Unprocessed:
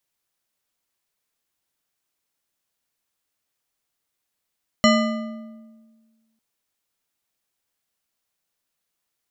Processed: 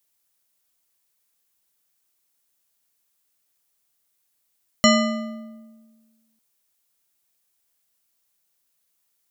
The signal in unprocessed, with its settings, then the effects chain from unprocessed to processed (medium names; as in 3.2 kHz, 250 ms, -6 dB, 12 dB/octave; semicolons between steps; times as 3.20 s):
metal hit bar, lowest mode 224 Hz, modes 8, decay 1.63 s, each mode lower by 2 dB, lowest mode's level -14 dB
treble shelf 6.1 kHz +10.5 dB